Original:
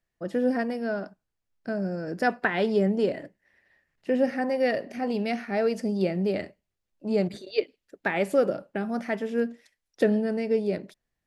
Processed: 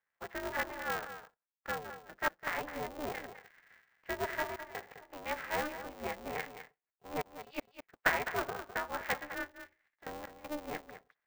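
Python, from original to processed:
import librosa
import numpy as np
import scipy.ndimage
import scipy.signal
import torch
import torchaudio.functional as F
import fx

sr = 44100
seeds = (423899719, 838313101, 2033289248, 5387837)

y = fx.spec_gate(x, sr, threshold_db=-30, keep='strong')
y = scipy.signal.sosfilt(scipy.signal.cheby1(2, 1.0, [840.0, 1800.0], 'bandpass', fs=sr, output='sos'), y)
y = fx.rider(y, sr, range_db=4, speed_s=0.5)
y = fx.step_gate(y, sr, bpm=79, pattern='xxxxxxxxxx.x.x', floor_db=-24.0, edge_ms=4.5)
y = y + 10.0 ** (-11.0 / 20.0) * np.pad(y, (int(207 * sr / 1000.0), 0))[:len(y)]
y = y * np.sign(np.sin(2.0 * np.pi * 150.0 * np.arange(len(y)) / sr))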